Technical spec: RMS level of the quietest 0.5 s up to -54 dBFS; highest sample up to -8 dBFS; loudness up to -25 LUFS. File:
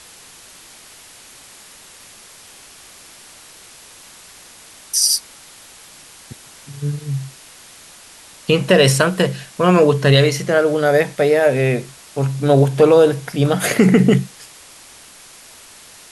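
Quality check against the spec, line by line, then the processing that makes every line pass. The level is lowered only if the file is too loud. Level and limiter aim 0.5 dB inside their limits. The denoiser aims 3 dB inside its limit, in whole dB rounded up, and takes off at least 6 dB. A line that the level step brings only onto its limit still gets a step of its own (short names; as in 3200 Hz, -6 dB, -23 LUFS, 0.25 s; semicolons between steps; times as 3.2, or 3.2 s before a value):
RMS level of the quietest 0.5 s -43 dBFS: fail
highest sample -2.5 dBFS: fail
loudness -15.5 LUFS: fail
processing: denoiser 6 dB, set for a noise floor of -43 dBFS; gain -10 dB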